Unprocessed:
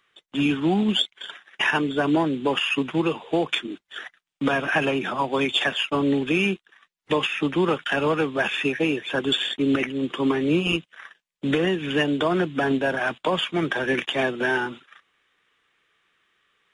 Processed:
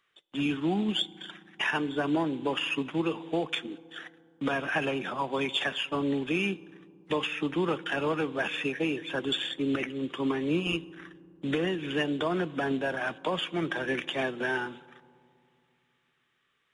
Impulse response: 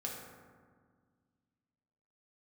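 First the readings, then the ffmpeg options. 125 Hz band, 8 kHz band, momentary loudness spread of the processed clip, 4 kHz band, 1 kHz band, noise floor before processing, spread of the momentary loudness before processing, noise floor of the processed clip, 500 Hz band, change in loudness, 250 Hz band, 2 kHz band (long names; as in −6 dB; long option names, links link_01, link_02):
−6.5 dB, −7.0 dB, 9 LU, −6.5 dB, −6.5 dB, −79 dBFS, 6 LU, −74 dBFS, −6.5 dB, −6.5 dB, −6.5 dB, −7.0 dB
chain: -filter_complex "[0:a]asplit=2[link_01][link_02];[1:a]atrim=start_sample=2205,asetrate=28665,aresample=44100[link_03];[link_02][link_03]afir=irnorm=-1:irlink=0,volume=-19.5dB[link_04];[link_01][link_04]amix=inputs=2:normalize=0,volume=-7.5dB"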